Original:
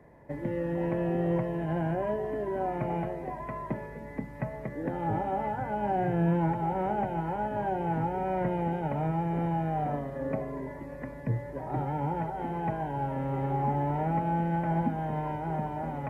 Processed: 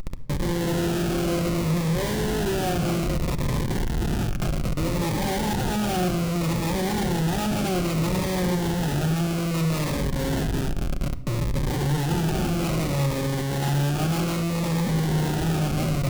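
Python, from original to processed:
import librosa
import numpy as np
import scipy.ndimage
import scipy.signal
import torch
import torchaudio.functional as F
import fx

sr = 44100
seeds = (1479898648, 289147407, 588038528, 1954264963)

p1 = fx.delta_mod(x, sr, bps=16000, step_db=-33.5)
p2 = fx.spec_erase(p1, sr, start_s=3.9, length_s=0.4, low_hz=380.0, high_hz=930.0)
p3 = fx.rider(p2, sr, range_db=5, speed_s=2.0)
p4 = p2 + (p3 * 10.0 ** (0.5 / 20.0))
p5 = fx.schmitt(p4, sr, flips_db=-28.5)
p6 = fx.room_shoebox(p5, sr, seeds[0], volume_m3=2800.0, walls='furnished', distance_m=0.92)
y = fx.notch_cascade(p6, sr, direction='falling', hz=0.62)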